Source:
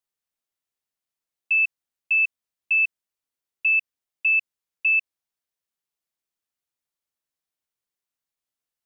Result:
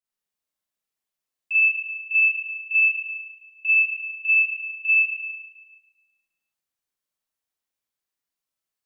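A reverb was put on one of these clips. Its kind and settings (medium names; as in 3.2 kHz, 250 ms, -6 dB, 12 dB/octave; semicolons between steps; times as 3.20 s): Schroeder reverb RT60 1.3 s, combs from 29 ms, DRR -8 dB; trim -7.5 dB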